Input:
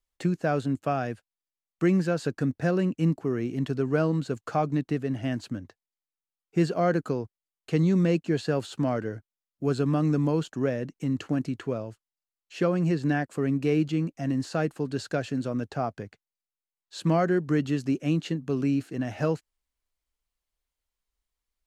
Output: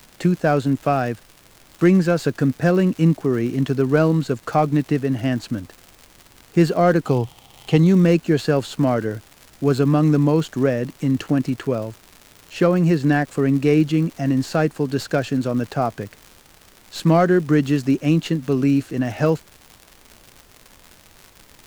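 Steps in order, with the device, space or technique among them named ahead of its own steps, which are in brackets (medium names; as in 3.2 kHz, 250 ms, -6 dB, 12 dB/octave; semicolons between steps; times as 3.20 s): record under a worn stylus (tracing distortion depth 0.03 ms; crackle 130 per s -38 dBFS; pink noise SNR 32 dB); 7.06–7.78 s: graphic EQ with 31 bands 125 Hz +8 dB, 800 Hz +11 dB, 1.6 kHz -6 dB, 3.15 kHz +10 dB; trim +8 dB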